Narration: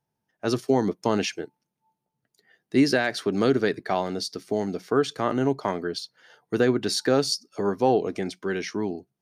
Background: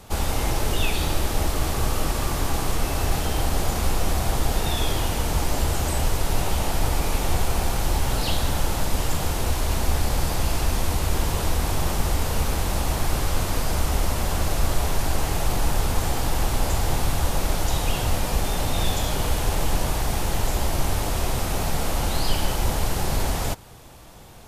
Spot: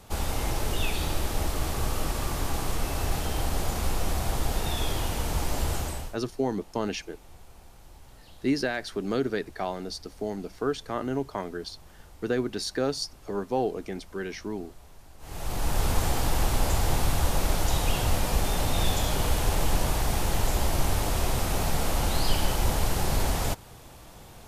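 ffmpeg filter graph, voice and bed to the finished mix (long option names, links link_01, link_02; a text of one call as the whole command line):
ffmpeg -i stem1.wav -i stem2.wav -filter_complex "[0:a]adelay=5700,volume=-6dB[link_01];[1:a]volume=21dB,afade=type=out:start_time=5.75:duration=0.41:silence=0.0707946,afade=type=in:start_time=15.19:duration=0.69:silence=0.0501187[link_02];[link_01][link_02]amix=inputs=2:normalize=0" out.wav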